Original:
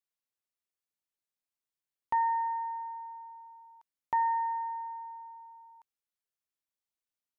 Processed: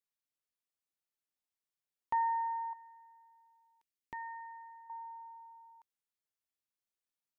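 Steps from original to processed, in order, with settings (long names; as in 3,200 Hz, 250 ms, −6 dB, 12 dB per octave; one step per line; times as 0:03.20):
0:02.73–0:04.90: flat-topped bell 890 Hz −13 dB
level −3.5 dB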